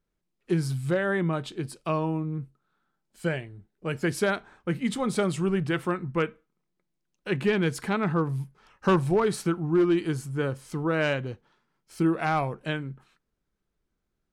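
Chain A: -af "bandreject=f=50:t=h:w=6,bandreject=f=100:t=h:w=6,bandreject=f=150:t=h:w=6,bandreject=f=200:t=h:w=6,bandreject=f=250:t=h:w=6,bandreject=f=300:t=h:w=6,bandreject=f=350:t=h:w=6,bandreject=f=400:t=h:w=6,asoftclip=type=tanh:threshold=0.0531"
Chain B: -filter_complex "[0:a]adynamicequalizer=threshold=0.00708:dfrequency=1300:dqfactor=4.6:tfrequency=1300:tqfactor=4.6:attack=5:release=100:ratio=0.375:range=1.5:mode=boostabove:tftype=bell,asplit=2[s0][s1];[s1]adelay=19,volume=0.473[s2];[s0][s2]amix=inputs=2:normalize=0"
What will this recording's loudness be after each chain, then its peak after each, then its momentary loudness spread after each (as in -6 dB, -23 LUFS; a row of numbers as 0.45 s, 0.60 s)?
-32.5 LUFS, -26.5 LUFS; -25.5 dBFS, -10.5 dBFS; 8 LU, 10 LU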